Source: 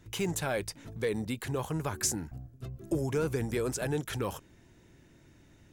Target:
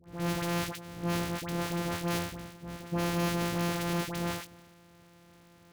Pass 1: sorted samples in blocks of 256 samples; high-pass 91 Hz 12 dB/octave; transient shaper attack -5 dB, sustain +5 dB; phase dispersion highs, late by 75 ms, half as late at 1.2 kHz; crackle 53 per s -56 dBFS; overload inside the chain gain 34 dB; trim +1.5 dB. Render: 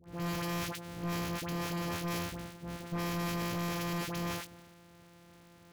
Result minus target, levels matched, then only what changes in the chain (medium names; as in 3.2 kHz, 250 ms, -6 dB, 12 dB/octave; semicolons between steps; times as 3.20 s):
overload inside the chain: distortion +17 dB
change: overload inside the chain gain 24 dB